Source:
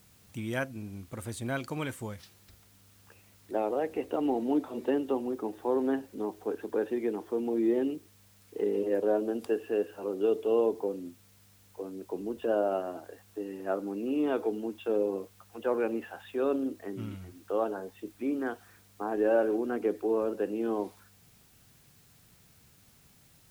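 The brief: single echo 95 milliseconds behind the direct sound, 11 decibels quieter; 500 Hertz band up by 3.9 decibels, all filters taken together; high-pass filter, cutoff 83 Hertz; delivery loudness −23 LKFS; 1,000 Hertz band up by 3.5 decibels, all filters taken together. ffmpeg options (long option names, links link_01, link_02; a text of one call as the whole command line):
ffmpeg -i in.wav -af "highpass=83,equalizer=frequency=500:width_type=o:gain=4,equalizer=frequency=1000:width_type=o:gain=3,aecho=1:1:95:0.282,volume=5dB" out.wav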